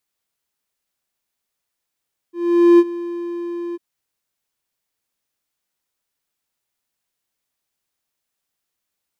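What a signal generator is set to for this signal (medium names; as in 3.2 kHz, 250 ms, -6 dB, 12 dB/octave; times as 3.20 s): ADSR triangle 345 Hz, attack 459 ms, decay 45 ms, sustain -18 dB, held 1.42 s, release 28 ms -3.5 dBFS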